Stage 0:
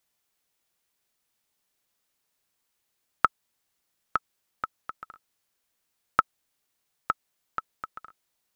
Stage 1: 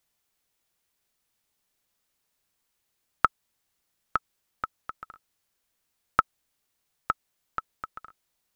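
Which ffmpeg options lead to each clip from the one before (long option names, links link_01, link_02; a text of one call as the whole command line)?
ffmpeg -i in.wav -af "lowshelf=frequency=110:gain=6" out.wav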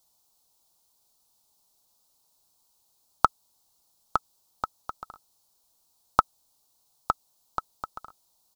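ffmpeg -i in.wav -af "firequalizer=gain_entry='entry(470,0);entry(860,8);entry(1800,-16);entry(4100,6)':delay=0.05:min_phase=1,volume=3.5dB" out.wav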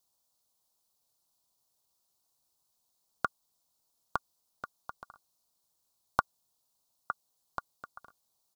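ffmpeg -i in.wav -af "aeval=exprs='val(0)*sin(2*PI*130*n/s)':channel_layout=same,volume=-5.5dB" out.wav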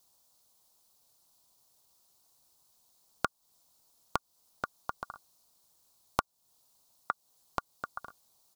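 ffmpeg -i in.wav -af "acompressor=threshold=-40dB:ratio=2.5,volume=9dB" out.wav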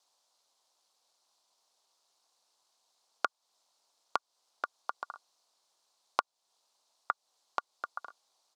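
ffmpeg -i in.wav -af "highpass=520,lowpass=5500,volume=1dB" out.wav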